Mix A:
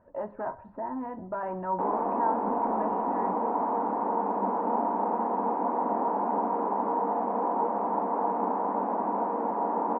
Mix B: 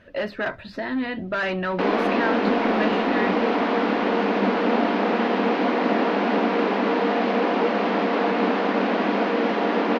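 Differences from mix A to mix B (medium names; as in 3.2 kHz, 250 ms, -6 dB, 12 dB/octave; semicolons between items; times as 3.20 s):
speech: send off; master: remove four-pole ladder low-pass 990 Hz, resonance 75%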